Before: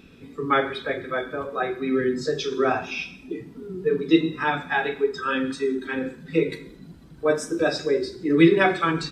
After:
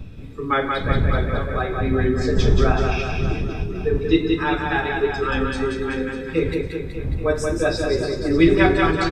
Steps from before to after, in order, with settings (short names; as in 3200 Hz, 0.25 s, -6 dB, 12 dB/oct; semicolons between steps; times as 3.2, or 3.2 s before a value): wind noise 100 Hz -26 dBFS; reverse bouncing-ball echo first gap 0.18 s, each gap 1.1×, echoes 5